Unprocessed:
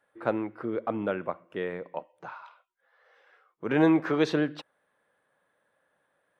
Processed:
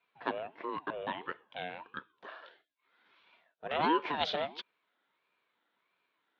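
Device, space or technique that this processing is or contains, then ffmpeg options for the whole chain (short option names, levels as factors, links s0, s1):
voice changer toy: -af "aeval=exprs='val(0)*sin(2*PI*490*n/s+490*0.45/1.5*sin(2*PI*1.5*n/s))':c=same,highpass=470,equalizer=f=570:t=q:w=4:g=-4,equalizer=f=810:t=q:w=4:g=-10,equalizer=f=1200:t=q:w=4:g=-8,equalizer=f=2000:t=q:w=4:g=-8,equalizer=f=3500:t=q:w=4:g=6,lowpass=f=4500:w=0.5412,lowpass=f=4500:w=1.3066,volume=1.5"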